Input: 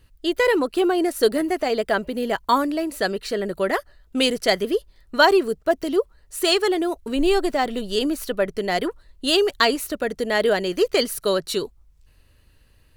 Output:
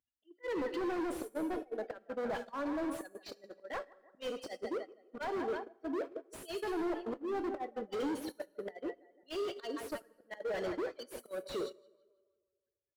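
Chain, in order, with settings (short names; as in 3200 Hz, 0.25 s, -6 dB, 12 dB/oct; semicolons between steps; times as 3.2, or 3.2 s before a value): spectral gate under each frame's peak -15 dB strong; HPF 390 Hz 12 dB/oct; comb 3.6 ms, depth 33%; tape echo 0.163 s, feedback 57%, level -17 dB, low-pass 2900 Hz; auto swell 0.457 s; overloaded stage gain 33.5 dB; plate-style reverb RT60 1.3 s, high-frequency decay 0.7×, DRR 9.5 dB; gate -38 dBFS, range -18 dB; slew limiter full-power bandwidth 20 Hz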